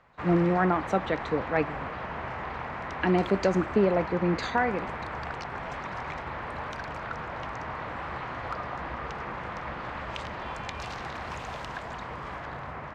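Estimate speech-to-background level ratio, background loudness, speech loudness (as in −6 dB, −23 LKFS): 9.0 dB, −36.0 LKFS, −27.0 LKFS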